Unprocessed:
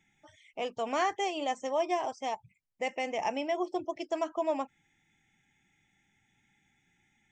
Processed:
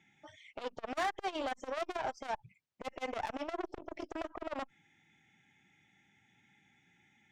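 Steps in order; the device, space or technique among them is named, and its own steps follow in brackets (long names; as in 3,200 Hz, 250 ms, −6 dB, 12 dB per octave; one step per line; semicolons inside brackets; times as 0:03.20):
valve radio (band-pass filter 100–5,300 Hz; tube saturation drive 33 dB, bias 0.45; saturating transformer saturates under 520 Hz)
level +5 dB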